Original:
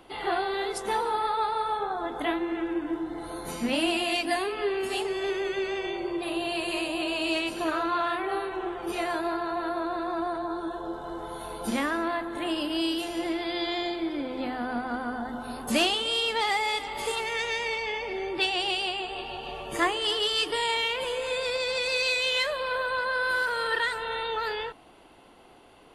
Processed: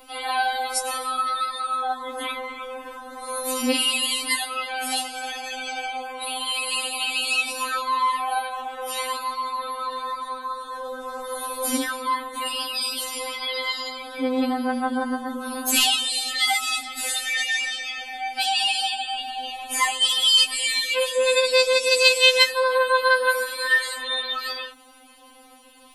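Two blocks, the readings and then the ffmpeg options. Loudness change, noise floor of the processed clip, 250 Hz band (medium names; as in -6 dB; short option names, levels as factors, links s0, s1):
+6.0 dB, -47 dBFS, -1.5 dB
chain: -af "aemphasis=mode=production:type=75kf,afftfilt=real='re*3.46*eq(mod(b,12),0)':imag='im*3.46*eq(mod(b,12),0)':win_size=2048:overlap=0.75,volume=1.58"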